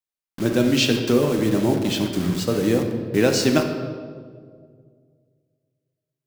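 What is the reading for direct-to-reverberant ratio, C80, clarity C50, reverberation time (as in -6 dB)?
3.5 dB, 7.5 dB, 5.5 dB, 2.0 s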